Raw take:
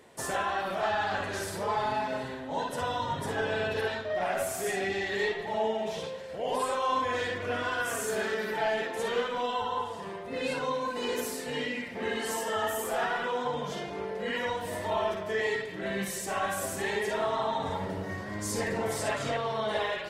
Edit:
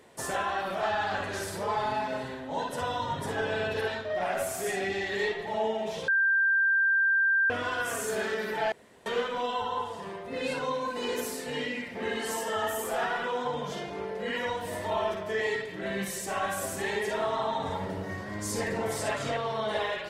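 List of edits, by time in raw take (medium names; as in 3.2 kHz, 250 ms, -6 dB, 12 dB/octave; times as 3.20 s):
6.08–7.50 s: bleep 1.58 kHz -21 dBFS
8.72–9.06 s: room tone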